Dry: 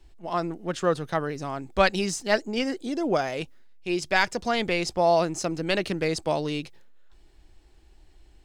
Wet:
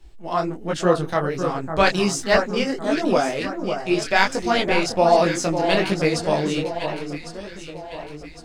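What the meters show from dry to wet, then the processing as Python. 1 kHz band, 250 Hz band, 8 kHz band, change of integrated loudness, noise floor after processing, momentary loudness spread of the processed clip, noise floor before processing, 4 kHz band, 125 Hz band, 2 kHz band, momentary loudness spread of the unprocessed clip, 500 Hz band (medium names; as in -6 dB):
+6.0 dB, +6.0 dB, +5.5 dB, +5.0 dB, -38 dBFS, 16 LU, -55 dBFS, +5.0 dB, +6.0 dB, +5.0 dB, 9 LU, +5.5 dB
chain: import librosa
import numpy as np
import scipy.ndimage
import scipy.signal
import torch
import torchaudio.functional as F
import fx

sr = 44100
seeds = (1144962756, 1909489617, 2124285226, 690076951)

y = fx.echo_alternate(x, sr, ms=553, hz=1500.0, feedback_pct=65, wet_db=-7)
y = fx.detune_double(y, sr, cents=46)
y = y * 10.0 ** (8.5 / 20.0)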